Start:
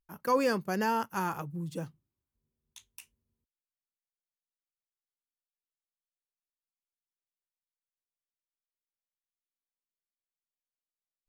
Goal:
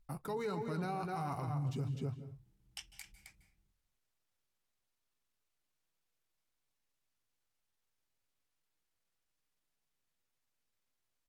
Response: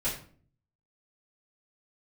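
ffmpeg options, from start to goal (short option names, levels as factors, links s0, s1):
-filter_complex "[0:a]lowshelf=f=150:g=9,asplit=2[s0][s1];[s1]adelay=256.6,volume=0.398,highshelf=f=4000:g=-5.77[s2];[s0][s2]amix=inputs=2:normalize=0,flanger=delay=5:depth=2.1:regen=-48:speed=0.33:shape=triangular,highshelf=f=9000:g=-5.5,areverse,acompressor=threshold=0.01:ratio=6,areverse,asetrate=37084,aresample=44100,atempo=1.18921,alimiter=level_in=9.44:limit=0.0631:level=0:latency=1:release=210,volume=0.106,asplit=2[s3][s4];[1:a]atrim=start_sample=2205,afade=t=out:st=0.18:d=0.01,atrim=end_sample=8379,adelay=147[s5];[s4][s5]afir=irnorm=-1:irlink=0,volume=0.106[s6];[s3][s6]amix=inputs=2:normalize=0,volume=4.22"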